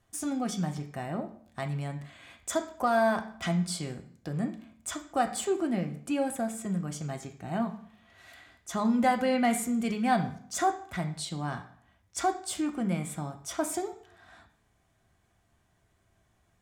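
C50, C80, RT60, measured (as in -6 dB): 11.5 dB, 15.0 dB, 0.55 s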